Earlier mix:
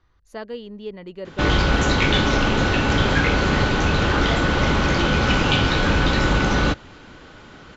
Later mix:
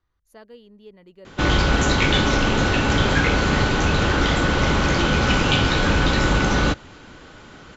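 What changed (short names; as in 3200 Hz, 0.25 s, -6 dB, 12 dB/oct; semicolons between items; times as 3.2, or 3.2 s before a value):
speech -12.0 dB; master: remove LPF 6300 Hz 12 dB/oct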